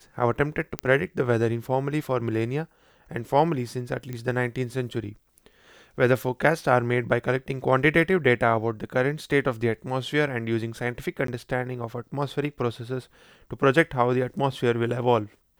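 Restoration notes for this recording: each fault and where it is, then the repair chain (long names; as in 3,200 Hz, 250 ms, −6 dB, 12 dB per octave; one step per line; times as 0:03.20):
0:00.79: click −9 dBFS
0:04.13: click −20 dBFS
0:11.27–0:11.28: drop-out 13 ms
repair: click removal
repair the gap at 0:11.27, 13 ms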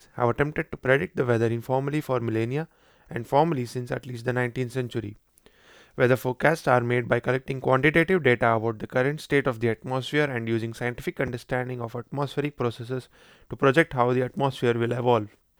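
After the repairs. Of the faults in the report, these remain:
none of them is left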